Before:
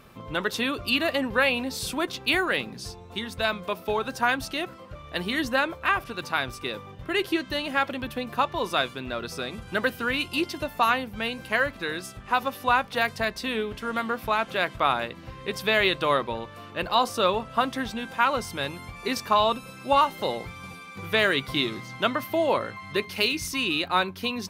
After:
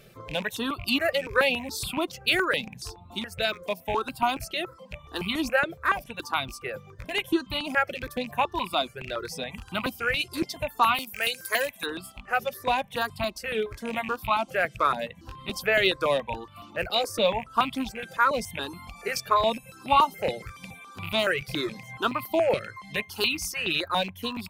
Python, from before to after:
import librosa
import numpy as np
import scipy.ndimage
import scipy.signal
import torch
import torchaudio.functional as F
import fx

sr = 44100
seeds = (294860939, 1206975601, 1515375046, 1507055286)

y = fx.rattle_buzz(x, sr, strikes_db=-36.0, level_db=-23.0)
y = fx.riaa(y, sr, side='recording', at=(10.94, 11.85), fade=0.02)
y = fx.dereverb_blind(y, sr, rt60_s=0.59)
y = fx.phaser_held(y, sr, hz=7.1, low_hz=270.0, high_hz=1700.0)
y = y * librosa.db_to_amplitude(2.5)